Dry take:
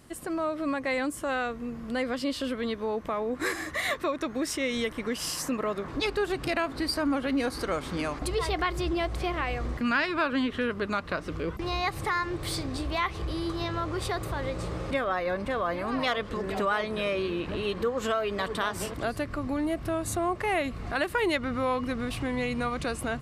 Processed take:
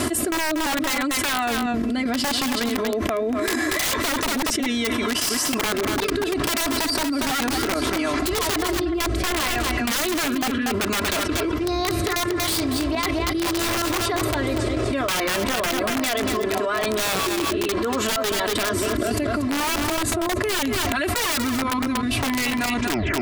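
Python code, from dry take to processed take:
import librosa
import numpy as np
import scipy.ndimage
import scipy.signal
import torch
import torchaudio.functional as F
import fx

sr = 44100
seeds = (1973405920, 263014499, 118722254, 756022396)

y = fx.tape_stop_end(x, sr, length_s=0.48)
y = scipy.signal.sosfilt(scipy.signal.butter(2, 100.0, 'highpass', fs=sr, output='sos'), y)
y = y + 0.95 * np.pad(y, (int(3.0 * sr / 1000.0), 0))[:len(y)]
y = fx.vibrato(y, sr, rate_hz=2.7, depth_cents=12.0)
y = fx.step_gate(y, sr, bpm=190, pattern='x...xxxxxx.', floor_db=-12.0, edge_ms=4.5)
y = fx.rotary(y, sr, hz=0.7)
y = (np.mod(10.0 ** (23.0 / 20.0) * y + 1.0, 2.0) - 1.0) / 10.0 ** (23.0 / 20.0)
y = y + 10.0 ** (-11.5 / 20.0) * np.pad(y, (int(237 * sr / 1000.0), 0))[:len(y)]
y = fx.env_flatten(y, sr, amount_pct=100)
y = F.gain(torch.from_numpy(y), 2.5).numpy()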